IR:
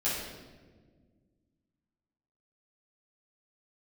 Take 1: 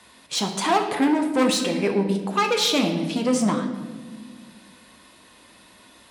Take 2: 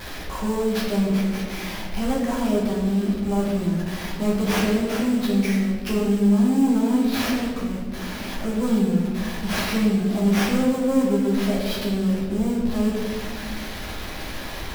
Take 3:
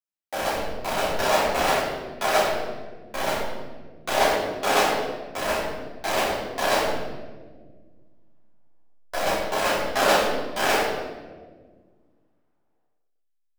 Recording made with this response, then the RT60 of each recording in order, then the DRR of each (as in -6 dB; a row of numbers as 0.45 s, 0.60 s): 3; 1.6 s, 1.5 s, 1.5 s; 3.0 dB, -5.5 dB, -10.0 dB